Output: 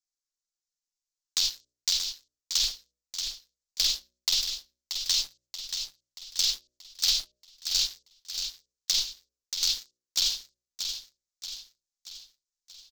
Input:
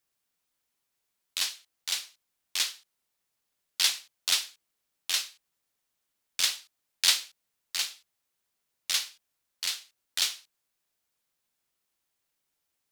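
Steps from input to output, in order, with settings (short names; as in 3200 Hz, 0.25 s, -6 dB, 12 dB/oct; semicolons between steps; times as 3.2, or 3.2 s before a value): half-waves squared off; inverse Chebyshev band-stop 170–980 Hz, stop band 80 dB; gate -59 dBFS, range -10 dB; steep low-pass 7600 Hz 48 dB/oct; treble ducked by the level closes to 2900 Hz, closed at -30.5 dBFS; bell 440 Hz -14.5 dB 2.4 oct; in parallel at -1.5 dB: negative-ratio compressor -43 dBFS, ratio -0.5; on the sum: transient shaper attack +3 dB, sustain -3 dB; sample leveller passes 3; de-hum 61 Hz, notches 10; soft clip -18 dBFS, distortion -17 dB; on a send: feedback echo 0.631 s, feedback 51%, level -7.5 dB; on the sum: gain +1 dB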